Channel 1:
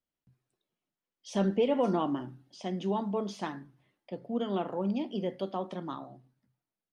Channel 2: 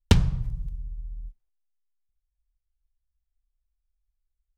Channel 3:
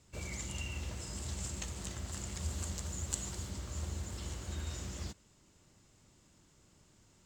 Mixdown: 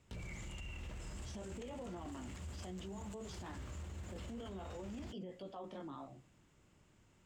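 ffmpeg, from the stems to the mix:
ffmpeg -i stem1.wav -i stem2.wav -i stem3.wav -filter_complex "[0:a]acrossover=split=450[link_01][link_02];[link_01]aeval=exprs='val(0)*(1-0.5/2+0.5/2*cos(2*PI*4.4*n/s))':channel_layout=same[link_03];[link_02]aeval=exprs='val(0)*(1-0.5/2-0.5/2*cos(2*PI*4.4*n/s))':channel_layout=same[link_04];[link_03][link_04]amix=inputs=2:normalize=0,volume=-1dB[link_05];[1:a]volume=-12.5dB[link_06];[2:a]highshelf=frequency=3500:width_type=q:width=1.5:gain=-6.5,alimiter=level_in=9dB:limit=-24dB:level=0:latency=1:release=263,volume=-9dB,volume=-2.5dB[link_07];[link_05][link_06]amix=inputs=2:normalize=0,flanger=delay=16.5:depth=5.5:speed=0.57,alimiter=level_in=6.5dB:limit=-24dB:level=0:latency=1:release=270,volume=-6.5dB,volume=0dB[link_08];[link_07][link_08]amix=inputs=2:normalize=0,alimiter=level_in=15.5dB:limit=-24dB:level=0:latency=1:release=12,volume=-15.5dB" out.wav

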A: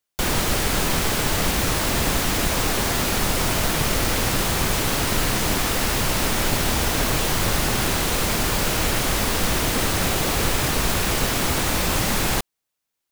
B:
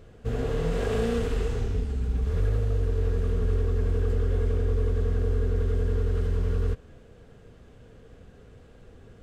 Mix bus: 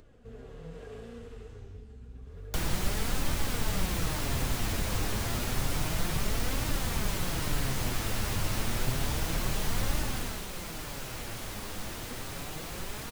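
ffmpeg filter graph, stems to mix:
ffmpeg -i stem1.wav -i stem2.wav -filter_complex "[0:a]adelay=2350,volume=-0.5dB,afade=type=out:start_time=9.96:duration=0.52:silence=0.281838[link_01];[1:a]acompressor=mode=upward:threshold=-29dB:ratio=2.5,volume=-13.5dB[link_02];[link_01][link_02]amix=inputs=2:normalize=0,acrossover=split=160[link_03][link_04];[link_04]acompressor=threshold=-35dB:ratio=2[link_05];[link_03][link_05]amix=inputs=2:normalize=0,flanger=delay=3.2:depth=6.9:regen=53:speed=0.3:shape=triangular" out.wav

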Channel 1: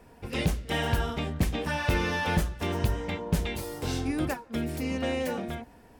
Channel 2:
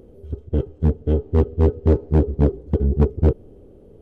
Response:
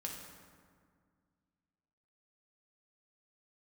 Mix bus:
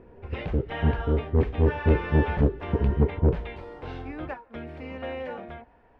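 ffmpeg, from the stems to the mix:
-filter_complex "[0:a]aemphasis=mode=reproduction:type=bsi,acrossover=split=5700[link_01][link_02];[link_02]acompressor=threshold=-59dB:ratio=4:attack=1:release=60[link_03];[link_01][link_03]amix=inputs=2:normalize=0,acrossover=split=440 3200:gain=0.158 1 0.0708[link_04][link_05][link_06];[link_04][link_05][link_06]amix=inputs=3:normalize=0,volume=-1.5dB[link_07];[1:a]lowpass=1700,volume=-5dB[link_08];[link_07][link_08]amix=inputs=2:normalize=0"

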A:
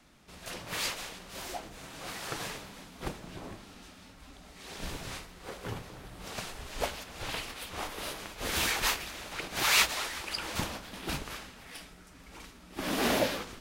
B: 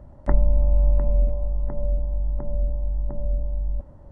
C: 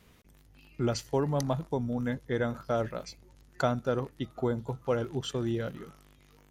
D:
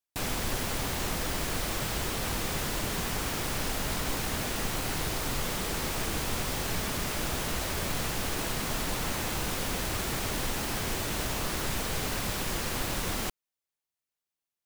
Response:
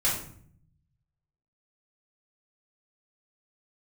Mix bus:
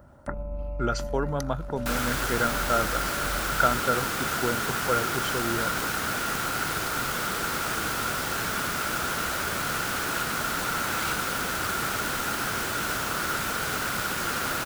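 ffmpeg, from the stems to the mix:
-filter_complex "[0:a]adelay=1300,volume=-14dB[link_01];[1:a]aemphasis=mode=production:type=75kf,alimiter=limit=-14.5dB:level=0:latency=1:release=38,volume=-2.5dB[link_02];[2:a]agate=range=-33dB:threshold=-48dB:ratio=3:detection=peak,volume=0.5dB[link_03];[3:a]acrusher=bits=2:mode=log:mix=0:aa=0.000001,adelay=1700,volume=1dB[link_04];[link_01][link_02][link_03][link_04]amix=inputs=4:normalize=0,highpass=frequency=130:poles=1,equalizer=frequency=1400:width=4.3:gain=15"

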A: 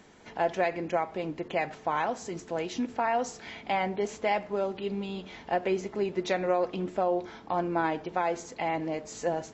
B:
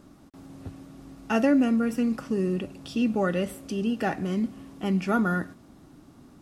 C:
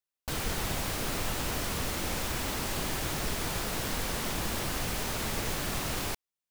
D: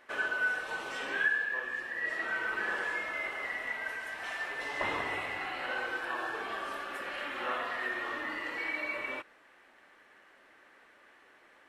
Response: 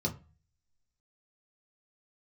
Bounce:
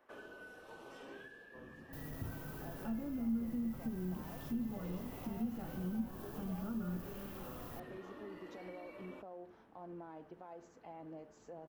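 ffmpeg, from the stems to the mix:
-filter_complex "[0:a]alimiter=level_in=0.5dB:limit=-24dB:level=0:latency=1:release=80,volume=-0.5dB,adelay=2250,volume=-15.5dB[link_01];[1:a]alimiter=limit=-23.5dB:level=0:latency=1:release=466,adelay=1550,volume=-8.5dB,asplit=2[link_02][link_03];[link_03]volume=-10.5dB[link_04];[2:a]highshelf=frequency=11000:gain=7,asoftclip=type=tanh:threshold=-33dB,adelay=1650,volume=-11.5dB[link_05];[3:a]acrossover=split=460|3000[link_06][link_07][link_08];[link_07]acompressor=threshold=-44dB:ratio=6[link_09];[link_06][link_09][link_08]amix=inputs=3:normalize=0,volume=-5.5dB[link_10];[4:a]atrim=start_sample=2205[link_11];[link_04][link_11]afir=irnorm=-1:irlink=0[link_12];[link_01][link_02][link_05][link_10][link_12]amix=inputs=5:normalize=0,equalizer=frequency=2000:width_type=o:width=1:gain=-11,equalizer=frequency=4000:width_type=o:width=1:gain=-7,equalizer=frequency=8000:width_type=o:width=1:gain=-11,acrossover=split=190[link_13][link_14];[link_14]acompressor=threshold=-45dB:ratio=3[link_15];[link_13][link_15]amix=inputs=2:normalize=0"

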